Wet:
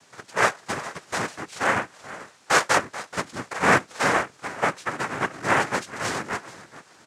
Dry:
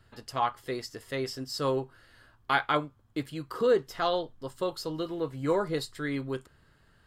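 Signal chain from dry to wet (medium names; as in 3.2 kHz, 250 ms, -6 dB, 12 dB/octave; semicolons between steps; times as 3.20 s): cycle switcher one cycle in 3, inverted; three-band isolator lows -13 dB, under 470 Hz, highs -15 dB, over 3 kHz; in parallel at -10 dB: word length cut 8-bit, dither triangular; on the sum: treble shelf 5.1 kHz -10 dB; on a send: feedback delay 433 ms, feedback 24%, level -16 dB; on the sum: noise-vocoded speech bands 3; trim +6.5 dB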